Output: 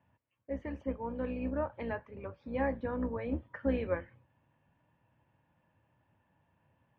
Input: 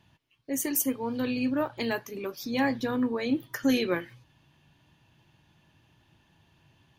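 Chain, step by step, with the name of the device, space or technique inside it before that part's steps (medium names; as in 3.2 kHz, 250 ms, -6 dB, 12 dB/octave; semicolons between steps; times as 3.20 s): sub-octave bass pedal (octave divider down 2 oct, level +2 dB; cabinet simulation 76–2200 Hz, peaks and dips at 150 Hz -4 dB, 370 Hz -7 dB, 540 Hz +9 dB, 940 Hz +4 dB); trim -8.5 dB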